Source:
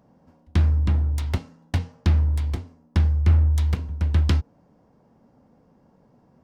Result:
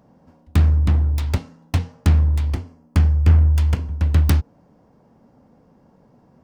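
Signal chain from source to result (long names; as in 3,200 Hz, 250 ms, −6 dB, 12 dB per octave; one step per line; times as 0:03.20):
phase distortion by the signal itself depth 0.52 ms
0:02.53–0:03.99: notch filter 3,800 Hz, Q 8.5
level +4 dB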